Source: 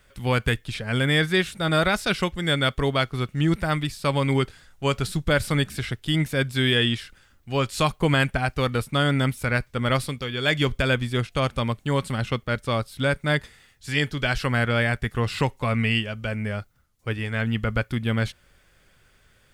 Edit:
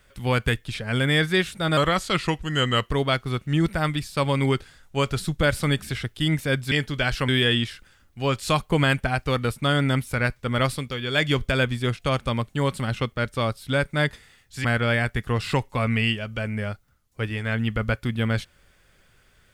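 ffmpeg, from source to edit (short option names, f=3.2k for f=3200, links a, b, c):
-filter_complex "[0:a]asplit=6[a][b][c][d][e][f];[a]atrim=end=1.774[g];[b]atrim=start=1.77:end=2.78,asetpts=PTS-STARTPTS,asetrate=39249,aresample=44100,atrim=end_sample=50046,asetpts=PTS-STARTPTS[h];[c]atrim=start=2.776:end=6.592[i];[d]atrim=start=13.948:end=14.522[j];[e]atrim=start=6.588:end=13.952[k];[f]atrim=start=14.518[l];[g][h]acrossfade=d=0.004:c1=hsin:c2=hsin[m];[m][i]acrossfade=d=0.004:c1=hsin:c2=hsin[n];[n][j]acrossfade=d=0.004:c1=hsin:c2=hsin[o];[o][k]acrossfade=d=0.004:c1=hsin:c2=hsin[p];[p][l]acrossfade=d=0.004:c1=hsin:c2=hsin"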